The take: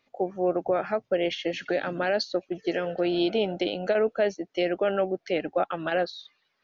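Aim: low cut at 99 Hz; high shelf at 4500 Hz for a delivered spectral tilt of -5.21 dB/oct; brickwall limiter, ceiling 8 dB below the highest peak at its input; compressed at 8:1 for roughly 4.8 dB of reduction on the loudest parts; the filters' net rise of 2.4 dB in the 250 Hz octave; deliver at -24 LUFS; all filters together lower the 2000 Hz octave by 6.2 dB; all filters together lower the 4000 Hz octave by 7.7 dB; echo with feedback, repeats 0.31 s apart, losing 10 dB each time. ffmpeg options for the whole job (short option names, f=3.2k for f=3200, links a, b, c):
-af "highpass=99,equalizer=f=250:t=o:g=4.5,equalizer=f=2k:t=o:g=-6.5,equalizer=f=4k:t=o:g=-5.5,highshelf=f=4.5k:g=-4.5,acompressor=threshold=-24dB:ratio=8,alimiter=limit=-23.5dB:level=0:latency=1,aecho=1:1:310|620|930|1240:0.316|0.101|0.0324|0.0104,volume=9.5dB"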